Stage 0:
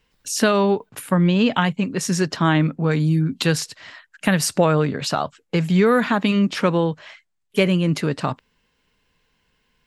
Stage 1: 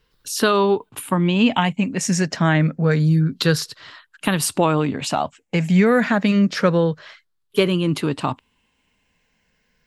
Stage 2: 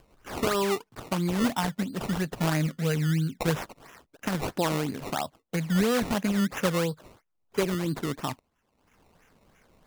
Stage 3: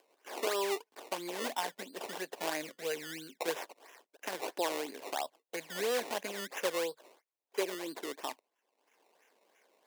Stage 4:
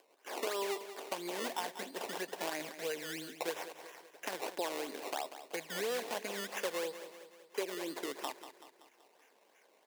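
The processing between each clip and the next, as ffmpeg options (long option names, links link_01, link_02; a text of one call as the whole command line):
ffmpeg -i in.wav -af "afftfilt=real='re*pow(10,7/40*sin(2*PI*(0.6*log(max(b,1)*sr/1024/100)/log(2)-(-0.28)*(pts-256)/sr)))':imag='im*pow(10,7/40*sin(2*PI*(0.6*log(max(b,1)*sr/1024/100)/log(2)-(-0.28)*(pts-256)/sr)))':win_size=1024:overlap=0.75" out.wav
ffmpeg -i in.wav -af "acrusher=samples=19:mix=1:aa=0.000001:lfo=1:lforange=19:lforate=3,acompressor=mode=upward:threshold=-38dB:ratio=2.5,volume=-9dB" out.wav
ffmpeg -i in.wav -af "highpass=frequency=370:width=0.5412,highpass=frequency=370:width=1.3066,equalizer=frequency=1300:width_type=o:width=0.28:gain=-9.5,volume=-4.5dB" out.wav
ffmpeg -i in.wav -filter_complex "[0:a]acompressor=threshold=-39dB:ratio=2,asplit=2[link_01][link_02];[link_02]aecho=0:1:190|380|570|760|950|1140:0.251|0.133|0.0706|0.0374|0.0198|0.0105[link_03];[link_01][link_03]amix=inputs=2:normalize=0,volume=2dB" out.wav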